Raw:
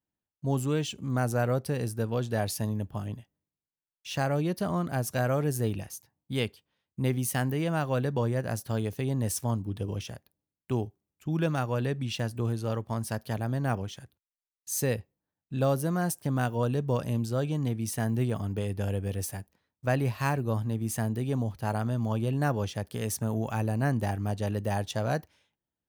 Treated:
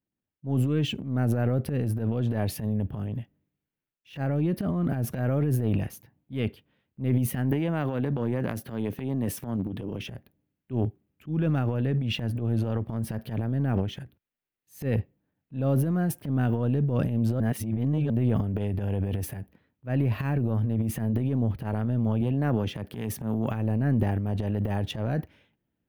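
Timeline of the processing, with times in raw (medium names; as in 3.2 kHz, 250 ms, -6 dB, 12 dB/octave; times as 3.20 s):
7.51–10.09 s: high-pass 160 Hz
17.40–18.10 s: reverse
22.21–23.51 s: high-pass 110 Hz
whole clip: graphic EQ 125/250/1000/4000/8000 Hz +3/+5/-6/-9/-8 dB; transient shaper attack -11 dB, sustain +10 dB; resonant high shelf 4.6 kHz -7 dB, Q 1.5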